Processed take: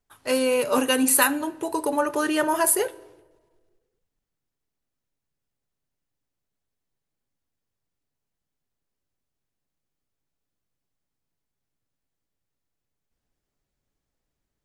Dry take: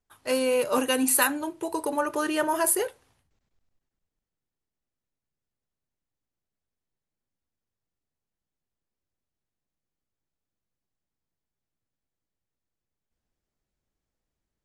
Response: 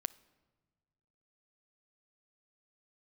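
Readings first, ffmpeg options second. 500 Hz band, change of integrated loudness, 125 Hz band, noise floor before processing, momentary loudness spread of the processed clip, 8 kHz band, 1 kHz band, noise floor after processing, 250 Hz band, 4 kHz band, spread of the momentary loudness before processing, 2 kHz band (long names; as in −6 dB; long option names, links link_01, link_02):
+2.5 dB, +3.0 dB, can't be measured, below −85 dBFS, 9 LU, +3.0 dB, +3.0 dB, −83 dBFS, +3.5 dB, +3.5 dB, 9 LU, +3.0 dB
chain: -filter_complex "[1:a]atrim=start_sample=2205[link_01];[0:a][link_01]afir=irnorm=-1:irlink=0,volume=4dB"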